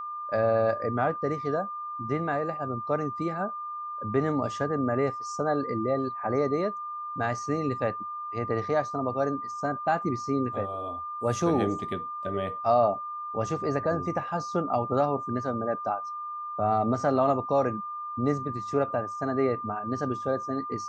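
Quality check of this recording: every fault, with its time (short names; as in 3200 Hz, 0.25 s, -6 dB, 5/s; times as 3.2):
tone 1200 Hz -33 dBFS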